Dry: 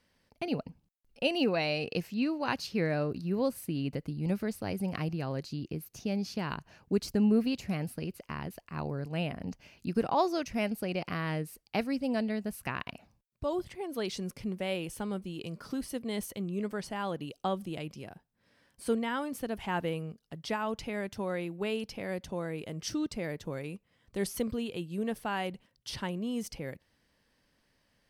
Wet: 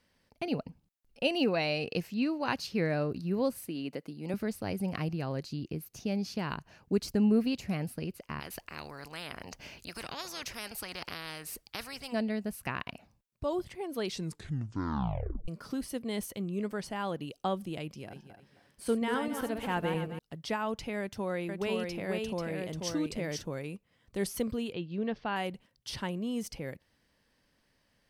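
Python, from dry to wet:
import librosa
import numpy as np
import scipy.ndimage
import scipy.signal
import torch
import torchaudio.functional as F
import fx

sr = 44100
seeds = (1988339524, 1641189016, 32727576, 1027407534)

y = fx.highpass(x, sr, hz=270.0, slope=12, at=(3.68, 4.34))
y = fx.spectral_comp(y, sr, ratio=4.0, at=(8.39, 12.12), fade=0.02)
y = fx.reverse_delay_fb(y, sr, ms=133, feedback_pct=51, wet_db=-6.0, at=(17.95, 20.19))
y = fx.echo_single(y, sr, ms=489, db=-3.5, at=(21.0, 23.43))
y = fx.steep_lowpass(y, sr, hz=5100.0, slope=36, at=(24.72, 25.36))
y = fx.edit(y, sr, fx.tape_stop(start_s=14.11, length_s=1.37), tone=tone)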